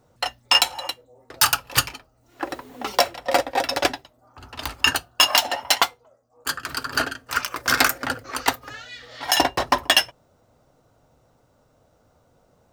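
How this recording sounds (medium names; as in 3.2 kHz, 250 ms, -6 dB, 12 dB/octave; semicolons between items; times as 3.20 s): noise floor -62 dBFS; spectral tilt -2.0 dB/octave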